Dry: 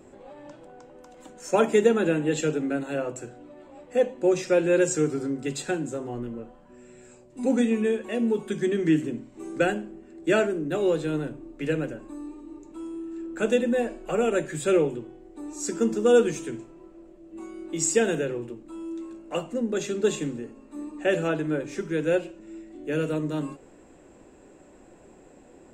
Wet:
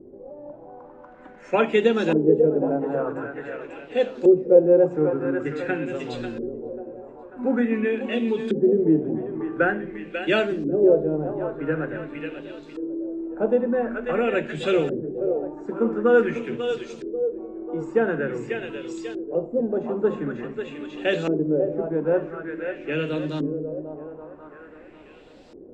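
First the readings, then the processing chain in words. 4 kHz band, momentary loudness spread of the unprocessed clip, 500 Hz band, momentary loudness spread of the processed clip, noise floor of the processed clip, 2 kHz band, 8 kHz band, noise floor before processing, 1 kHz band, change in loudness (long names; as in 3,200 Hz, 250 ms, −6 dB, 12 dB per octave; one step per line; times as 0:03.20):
+1.0 dB, 18 LU, +3.5 dB, 16 LU, −46 dBFS, +3.0 dB, below −15 dB, −52 dBFS, +2.5 dB, +2.0 dB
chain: bit-depth reduction 10 bits, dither none
echo with a time of its own for lows and highs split 320 Hz, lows 223 ms, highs 542 ms, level −8 dB
auto-filter low-pass saw up 0.47 Hz 360–4,800 Hz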